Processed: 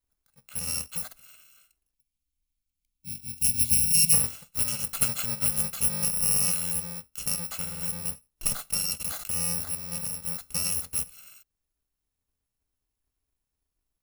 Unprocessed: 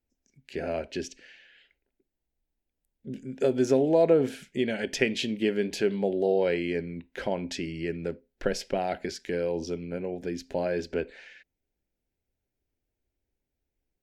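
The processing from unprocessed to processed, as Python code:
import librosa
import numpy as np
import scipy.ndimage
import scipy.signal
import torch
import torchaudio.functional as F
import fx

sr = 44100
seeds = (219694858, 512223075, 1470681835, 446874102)

y = fx.bit_reversed(x, sr, seeds[0], block=128)
y = fx.spec_box(y, sr, start_s=1.94, length_s=2.19, low_hz=280.0, high_hz=2100.0, gain_db=-25)
y = fx.sustainer(y, sr, db_per_s=57.0, at=(8.99, 9.62), fade=0.02)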